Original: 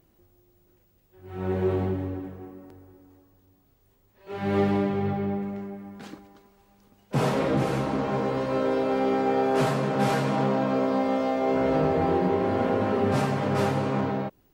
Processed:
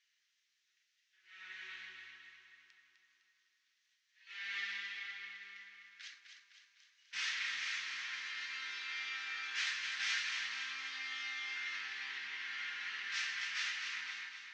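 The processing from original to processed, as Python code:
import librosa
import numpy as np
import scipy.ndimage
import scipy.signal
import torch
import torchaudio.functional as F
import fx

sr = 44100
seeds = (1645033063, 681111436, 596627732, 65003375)

y = scipy.signal.sosfilt(scipy.signal.ellip(3, 1.0, 50, [1800.0, 6200.0], 'bandpass', fs=sr, output='sos'), x)
y = fx.echo_feedback(y, sr, ms=254, feedback_pct=55, wet_db=-7.0)
y = y * librosa.db_to_amplitude(1.0)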